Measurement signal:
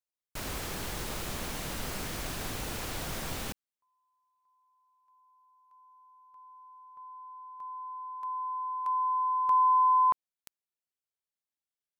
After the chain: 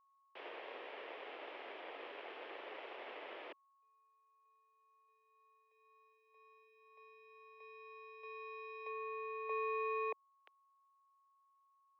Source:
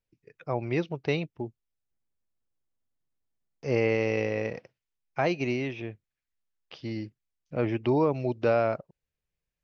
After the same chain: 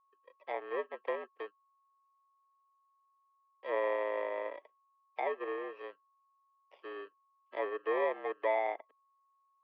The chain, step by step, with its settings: FFT order left unsorted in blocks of 32 samples; treble ducked by the level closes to 2000 Hz, closed at -26.5 dBFS; mistuned SSB +82 Hz 330–3000 Hz; whine 1100 Hz -67 dBFS; gain -4 dB

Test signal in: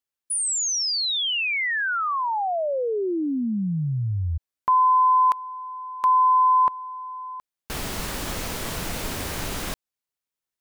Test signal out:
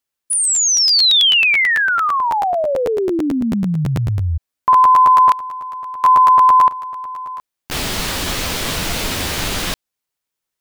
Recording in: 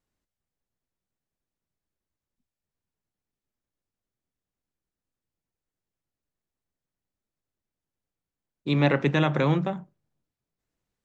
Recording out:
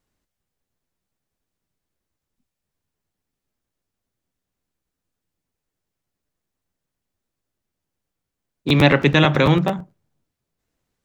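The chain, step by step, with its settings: dynamic EQ 3600 Hz, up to +6 dB, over -41 dBFS, Q 0.76; crackling interface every 0.11 s, samples 512, repeat, from 0.32; gain +7 dB

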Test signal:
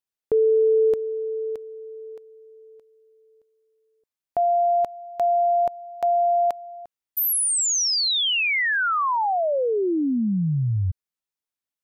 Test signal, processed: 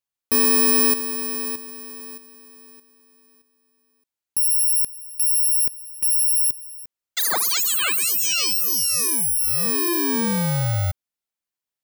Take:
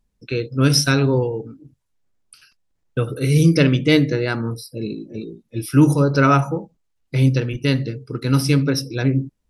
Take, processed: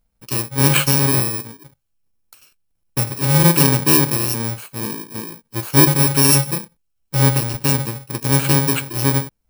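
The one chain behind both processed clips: FFT order left unsorted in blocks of 64 samples; gain +1 dB

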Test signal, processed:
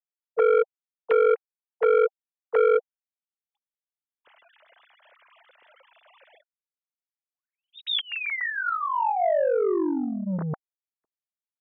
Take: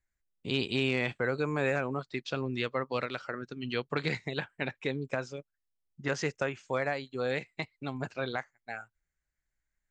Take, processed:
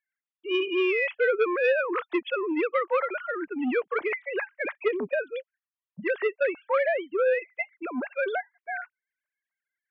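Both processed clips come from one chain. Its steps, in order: sine-wave speech; notch 780 Hz, Q 12; core saturation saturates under 700 Hz; gain +7 dB

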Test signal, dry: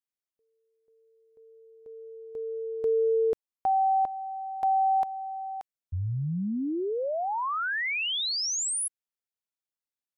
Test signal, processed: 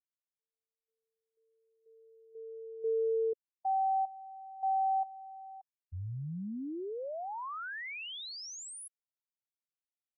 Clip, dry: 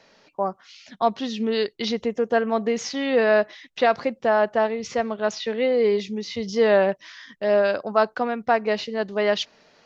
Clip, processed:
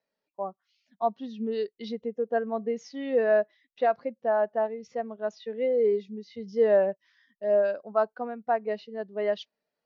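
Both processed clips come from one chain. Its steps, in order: spectral expander 1.5:1; gain -6 dB

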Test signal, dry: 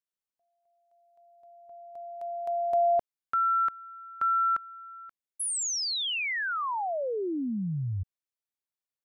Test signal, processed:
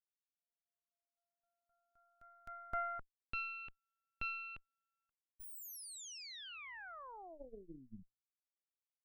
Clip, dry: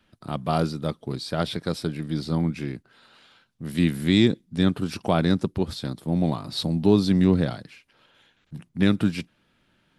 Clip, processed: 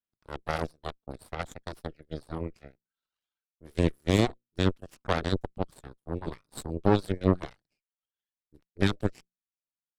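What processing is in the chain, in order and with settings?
notches 60/120/180/240/300 Hz; reverb removal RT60 1.4 s; added harmonics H 2 -9 dB, 3 -24 dB, 6 -16 dB, 7 -19 dB, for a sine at -6 dBFS; gain -4 dB

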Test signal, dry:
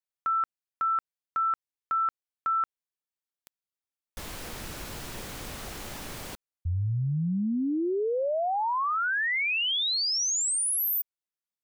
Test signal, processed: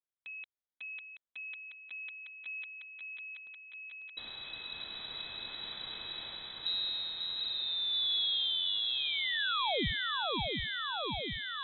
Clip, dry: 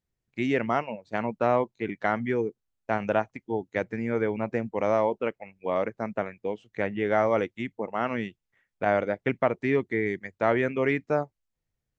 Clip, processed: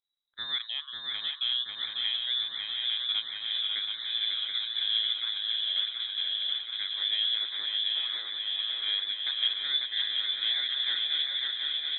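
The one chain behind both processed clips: fixed phaser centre 470 Hz, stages 4; inverted band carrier 3900 Hz; swung echo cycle 0.728 s, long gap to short 3:1, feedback 76%, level -4 dB; gain -5 dB

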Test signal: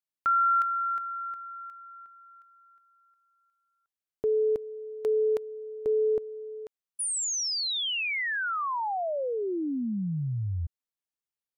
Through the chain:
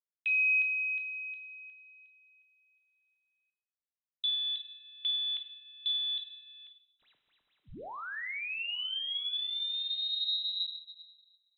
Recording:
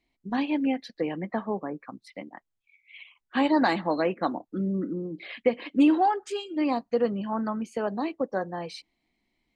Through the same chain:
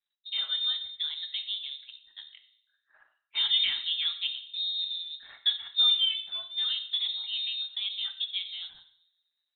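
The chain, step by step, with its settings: G.711 law mismatch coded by A; air absorption 440 m; shoebox room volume 140 m³, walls mixed, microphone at 0.43 m; inverted band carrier 3900 Hz; gain -3.5 dB

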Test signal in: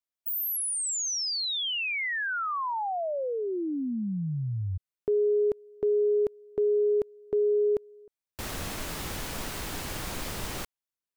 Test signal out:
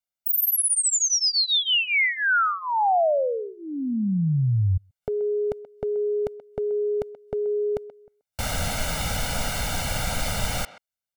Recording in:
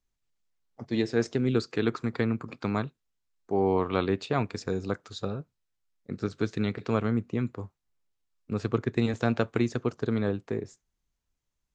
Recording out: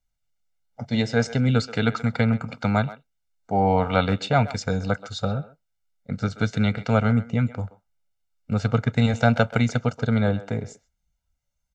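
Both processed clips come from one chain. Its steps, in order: spectral noise reduction 7 dB; comb 1.4 ms, depth 97%; speakerphone echo 0.13 s, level -15 dB; gain +5 dB

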